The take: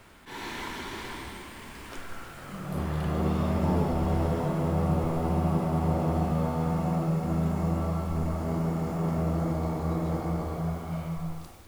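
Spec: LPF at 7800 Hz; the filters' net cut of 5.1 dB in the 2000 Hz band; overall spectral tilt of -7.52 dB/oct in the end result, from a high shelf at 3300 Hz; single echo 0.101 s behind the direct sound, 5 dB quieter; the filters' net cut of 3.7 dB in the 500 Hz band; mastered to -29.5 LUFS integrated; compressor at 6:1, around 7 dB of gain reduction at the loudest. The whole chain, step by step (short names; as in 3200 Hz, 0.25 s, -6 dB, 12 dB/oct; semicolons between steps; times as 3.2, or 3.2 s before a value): LPF 7800 Hz; bell 500 Hz -4.5 dB; bell 2000 Hz -4.5 dB; high shelf 3300 Hz -5.5 dB; compressor 6:1, threshold -30 dBFS; echo 0.101 s -5 dB; gain +4.5 dB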